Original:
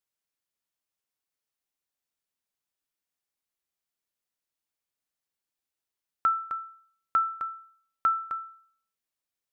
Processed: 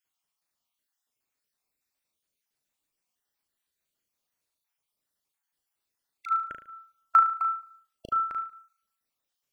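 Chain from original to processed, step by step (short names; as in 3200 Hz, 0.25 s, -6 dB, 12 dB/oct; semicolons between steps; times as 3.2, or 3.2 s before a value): random spectral dropouts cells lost 46%; flutter echo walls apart 6.3 m, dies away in 0.44 s; gain +5.5 dB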